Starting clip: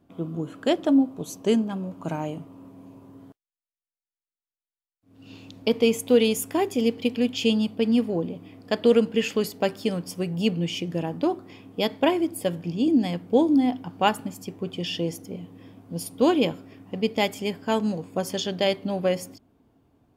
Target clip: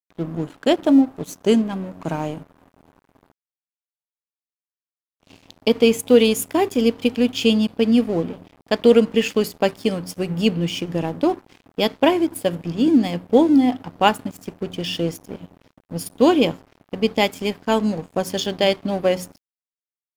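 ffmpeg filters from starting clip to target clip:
ffmpeg -i in.wav -af "bandreject=frequency=60.34:width_type=h:width=4,bandreject=frequency=120.68:width_type=h:width=4,bandreject=frequency=181.02:width_type=h:width=4,aeval=exprs='sgn(val(0))*max(abs(val(0))-0.00708,0)':channel_layout=same,volume=5.5dB" out.wav

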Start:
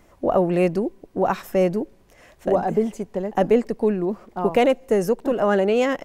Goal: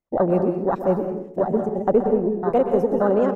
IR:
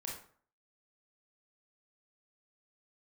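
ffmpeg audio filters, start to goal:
-filter_complex "[0:a]atempo=1.8,agate=range=-17dB:threshold=-51dB:ratio=16:detection=peak,afwtdn=0.0708,asplit=2[link_01][link_02];[1:a]atrim=start_sample=2205,asetrate=33516,aresample=44100,adelay=126[link_03];[link_02][link_03]afir=irnorm=-1:irlink=0,volume=-6dB[link_04];[link_01][link_04]amix=inputs=2:normalize=0"

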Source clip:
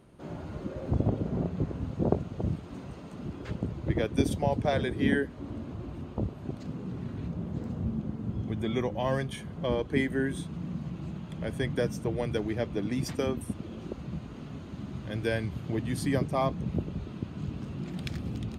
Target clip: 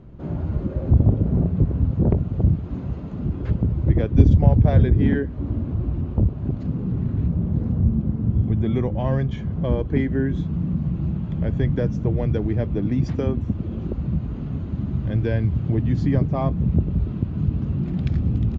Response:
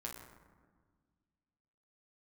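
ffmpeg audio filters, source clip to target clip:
-filter_complex "[0:a]aeval=exprs='0.398*(cos(1*acos(clip(val(0)/0.398,-1,1)))-cos(1*PI/2))+0.0562*(cos(5*acos(clip(val(0)/0.398,-1,1)))-cos(5*PI/2))':channel_layout=same,asettb=1/sr,asplit=3[link_01][link_02][link_03];[link_01]atrim=end=4.154[link_04];[link_02]atrim=start=4.15:end=5.02,asetpts=PTS-STARTPTS,afade=type=in:duration=0.004:curve=qsin,afade=type=out:start_time=0.866:duration=0.004:curve=qsin,lowshelf=frequency=170:gain=9[link_05];[link_03]atrim=start=5.016[link_06];[link_04][link_05]acrossfade=duration=0.004:curve1=hsin:curve2=qsin[link_07];[link_07][link_06]acrossfade=duration=0.004:curve1=qsin:curve2=hsin,asplit=2[link_08][link_09];[link_09]acompressor=threshold=-29dB:ratio=6,volume=-2.5dB[link_10];[link_08][link_10]amix=inputs=2:normalize=0,aresample=16000,aresample=44100,aemphasis=mode=reproduction:type=riaa,volume=-6dB"

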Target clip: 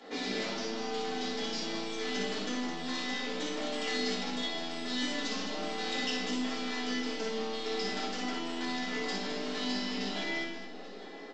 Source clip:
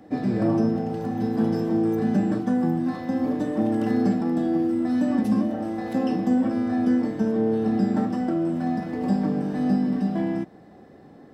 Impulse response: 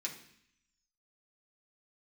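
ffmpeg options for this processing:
-filter_complex "[0:a]highpass=460,equalizer=frequency=4000:width_type=o:width=0.56:gain=11,acrossover=split=2100[link_01][link_02];[link_01]acompressor=threshold=-42dB:ratio=6[link_03];[link_03][link_02]amix=inputs=2:normalize=0,aeval=exprs='0.0398*(cos(1*acos(clip(val(0)/0.0398,-1,1)))-cos(1*PI/2))+0.00708*(cos(6*acos(clip(val(0)/0.0398,-1,1)))-cos(6*PI/2))':channel_layout=same,asplit=2[link_04][link_05];[link_05]adelay=17,volume=-9dB[link_06];[link_04][link_06]amix=inputs=2:normalize=0,aecho=1:1:59|210|837:0.562|0.376|0.141[link_07];[1:a]atrim=start_sample=2205,asetrate=57330,aresample=44100[link_08];[link_07][link_08]afir=irnorm=-1:irlink=0,volume=8dB" -ar 16000 -c:a pcm_mulaw

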